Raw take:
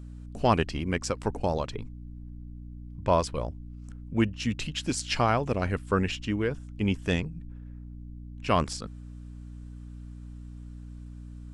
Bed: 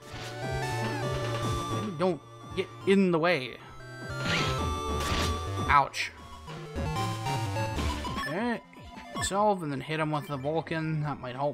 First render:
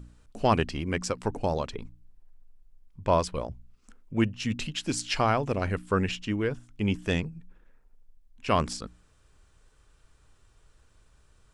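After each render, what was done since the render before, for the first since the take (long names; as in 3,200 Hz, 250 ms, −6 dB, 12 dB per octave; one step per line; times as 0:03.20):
hum removal 60 Hz, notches 5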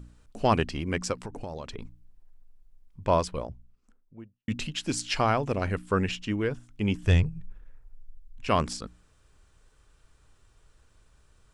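0:01.23–0:01.79: downward compressor, threshold −33 dBFS
0:03.11–0:04.48: fade out and dull
0:07.03–0:08.48: low shelf with overshoot 150 Hz +10.5 dB, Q 1.5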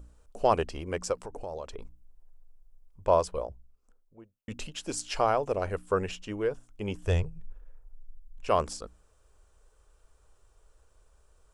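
graphic EQ with 10 bands 125 Hz −10 dB, 250 Hz −9 dB, 500 Hz +5 dB, 2,000 Hz −7 dB, 4,000 Hz −6 dB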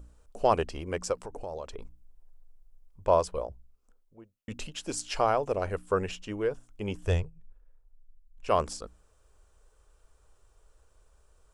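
0:07.13–0:08.52: duck −10 dB, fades 0.18 s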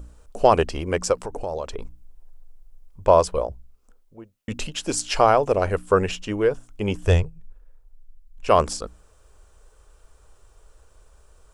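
level +9 dB
brickwall limiter −3 dBFS, peak gain reduction 2.5 dB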